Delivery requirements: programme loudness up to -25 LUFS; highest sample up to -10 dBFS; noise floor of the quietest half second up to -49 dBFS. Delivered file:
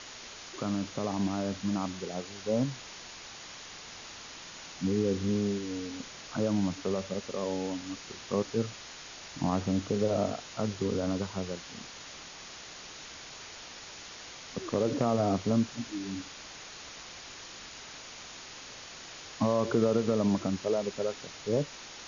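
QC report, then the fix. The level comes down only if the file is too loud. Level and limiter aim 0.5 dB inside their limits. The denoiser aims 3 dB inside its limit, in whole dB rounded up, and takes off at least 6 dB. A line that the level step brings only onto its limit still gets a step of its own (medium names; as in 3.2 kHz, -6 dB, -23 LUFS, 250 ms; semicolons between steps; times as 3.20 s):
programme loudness -33.0 LUFS: pass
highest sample -14.0 dBFS: pass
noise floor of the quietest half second -46 dBFS: fail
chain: noise reduction 6 dB, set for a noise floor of -46 dBFS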